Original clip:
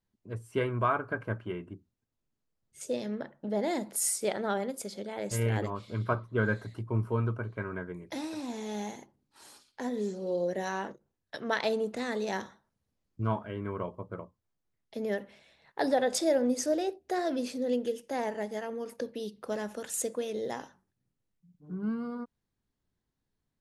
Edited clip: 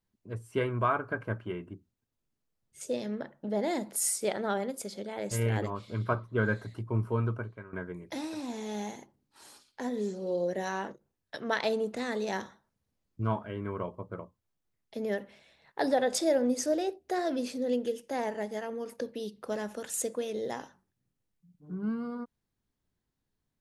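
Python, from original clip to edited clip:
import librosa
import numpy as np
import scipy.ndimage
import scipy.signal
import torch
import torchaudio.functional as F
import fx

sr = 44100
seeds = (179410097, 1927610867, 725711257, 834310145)

y = fx.edit(x, sr, fx.fade_out_to(start_s=7.39, length_s=0.34, curve='qua', floor_db=-13.0), tone=tone)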